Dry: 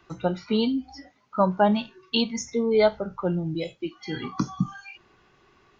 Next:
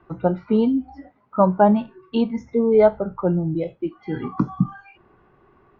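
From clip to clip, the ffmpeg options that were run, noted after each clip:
-af "lowpass=1200,volume=1.88"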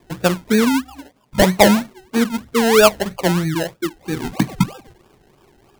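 -af "acrusher=samples=30:mix=1:aa=0.000001:lfo=1:lforange=18:lforate=3.1,volume=1.41"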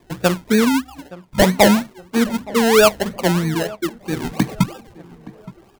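-filter_complex "[0:a]asoftclip=type=hard:threshold=0.531,asplit=2[s0][s1];[s1]adelay=870,lowpass=f=1400:p=1,volume=0.112,asplit=2[s2][s3];[s3]adelay=870,lowpass=f=1400:p=1,volume=0.43,asplit=2[s4][s5];[s5]adelay=870,lowpass=f=1400:p=1,volume=0.43[s6];[s0][s2][s4][s6]amix=inputs=4:normalize=0"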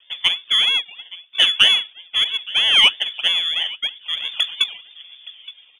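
-af "lowpass=f=3100:t=q:w=0.5098,lowpass=f=3100:t=q:w=0.6013,lowpass=f=3100:t=q:w=0.9,lowpass=f=3100:t=q:w=2.563,afreqshift=-3600,aexciter=amount=2:drive=4:freq=2100,volume=0.596"

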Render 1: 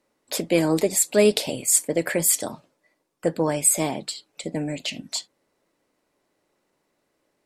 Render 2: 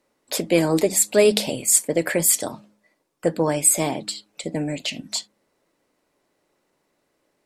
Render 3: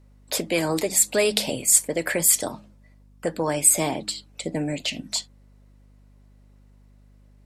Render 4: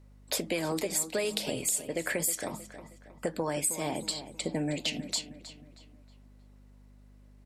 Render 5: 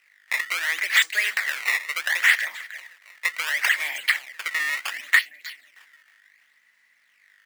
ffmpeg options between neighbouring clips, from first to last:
-af "bandreject=f=104:t=h:w=4,bandreject=f=208:t=h:w=4,bandreject=f=312:t=h:w=4,volume=1.26"
-filter_complex "[0:a]acrossover=split=750|1400[s0][s1][s2];[s0]alimiter=limit=0.133:level=0:latency=1:release=276[s3];[s3][s1][s2]amix=inputs=3:normalize=0,aeval=exprs='val(0)+0.00251*(sin(2*PI*50*n/s)+sin(2*PI*2*50*n/s)/2+sin(2*PI*3*50*n/s)/3+sin(2*PI*4*50*n/s)/4+sin(2*PI*5*50*n/s)/5)':c=same"
-filter_complex "[0:a]acompressor=threshold=0.0562:ratio=10,asplit=2[s0][s1];[s1]adelay=316,lowpass=f=4000:p=1,volume=0.251,asplit=2[s2][s3];[s3]adelay=316,lowpass=f=4000:p=1,volume=0.43,asplit=2[s4][s5];[s5]adelay=316,lowpass=f=4000:p=1,volume=0.43,asplit=2[s6][s7];[s7]adelay=316,lowpass=f=4000:p=1,volume=0.43[s8];[s0][s2][s4][s6][s8]amix=inputs=5:normalize=0,volume=0.794"
-af "acrusher=samples=16:mix=1:aa=0.000001:lfo=1:lforange=25.6:lforate=0.7,highpass=f=1900:t=q:w=7.4,volume=2"

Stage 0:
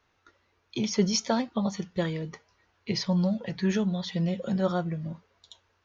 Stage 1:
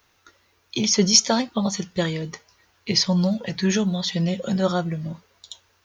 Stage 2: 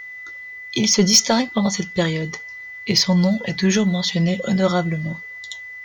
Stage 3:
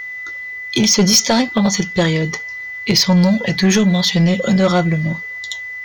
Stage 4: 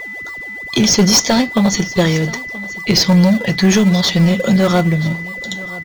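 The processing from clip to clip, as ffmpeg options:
-af "aemphasis=mode=production:type=75kf,volume=1.68"
-af "aeval=exprs='val(0)+0.0141*sin(2*PI*2000*n/s)':c=same,acontrast=86,volume=0.708"
-filter_complex "[0:a]asplit=2[s0][s1];[s1]alimiter=limit=0.266:level=0:latency=1:release=160,volume=1.26[s2];[s0][s2]amix=inputs=2:normalize=0,asoftclip=type=tanh:threshold=0.501"
-filter_complex "[0:a]asplit=2[s0][s1];[s1]acrusher=samples=27:mix=1:aa=0.000001:lfo=1:lforange=27:lforate=2.4,volume=0.251[s2];[s0][s2]amix=inputs=2:normalize=0,aecho=1:1:979:0.112"

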